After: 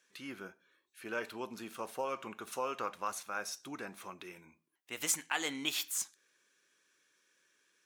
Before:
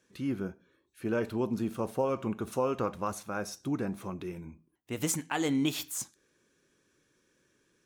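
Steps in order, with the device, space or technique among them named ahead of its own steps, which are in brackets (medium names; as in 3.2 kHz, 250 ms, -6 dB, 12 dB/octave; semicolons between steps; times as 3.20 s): filter by subtraction (in parallel: low-pass 2 kHz 12 dB/octave + polarity flip)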